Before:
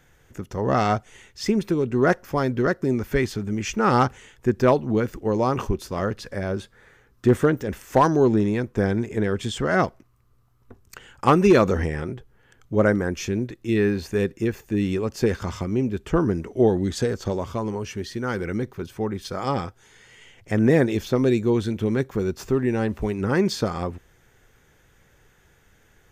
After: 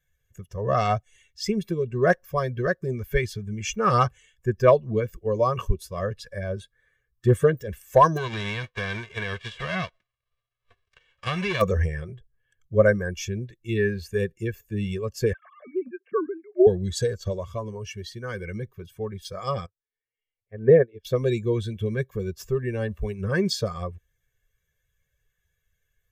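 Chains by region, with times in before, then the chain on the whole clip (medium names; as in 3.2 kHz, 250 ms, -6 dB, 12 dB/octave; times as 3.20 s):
8.16–11.60 s: formants flattened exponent 0.3 + low-pass 2.8 kHz + compression 4:1, threshold -20 dBFS
15.33–16.67 s: formants replaced by sine waves + low-pass 2.5 kHz 24 dB/octave + band-stop 960 Hz, Q 5.9
19.66–21.05 s: low-pass 2.6 kHz + peaking EQ 440 Hz +7 dB 0.4 oct + upward expansion 2.5:1, over -24 dBFS
whole clip: expander on every frequency bin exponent 1.5; comb 1.8 ms, depth 99%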